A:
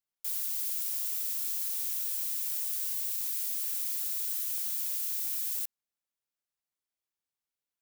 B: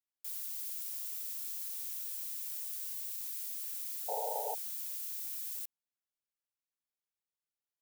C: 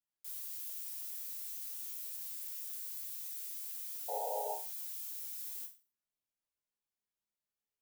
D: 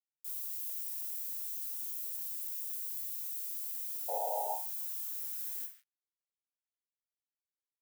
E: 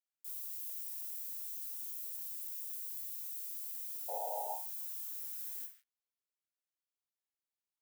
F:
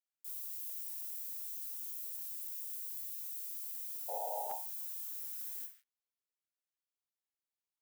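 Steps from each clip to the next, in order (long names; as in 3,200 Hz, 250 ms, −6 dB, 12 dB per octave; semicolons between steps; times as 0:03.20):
sound drawn into the spectrogram noise, 0:04.08–0:04.55, 420–940 Hz −30 dBFS; level −7.5 dB
low-shelf EQ 450 Hz +6 dB; resonators tuned to a chord C#2 fifth, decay 0.34 s; level +8 dB
high-shelf EQ 7,100 Hz +8 dB; bit reduction 10 bits; high-pass filter sweep 260 Hz → 2,000 Hz, 0:02.91–0:06.00; level −3.5 dB
high-pass filter 320 Hz 6 dB per octave; level −3.5 dB
regular buffer underruns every 0.45 s, samples 512, repeat, from 0:00.89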